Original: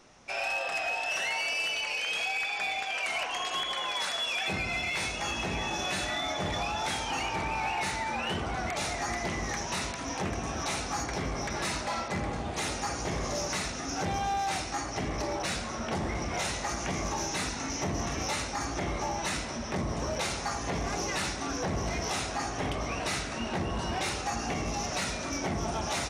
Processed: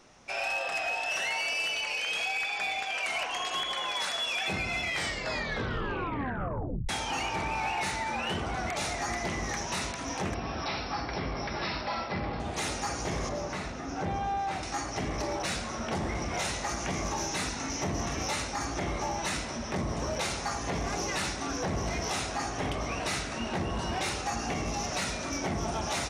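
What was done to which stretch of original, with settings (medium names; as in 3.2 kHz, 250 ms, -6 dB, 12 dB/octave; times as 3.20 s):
4.81 s: tape stop 2.08 s
10.34–12.40 s: Chebyshev low-pass 5.6 kHz, order 10
13.29–14.63 s: low-pass 1.6 kHz 6 dB/octave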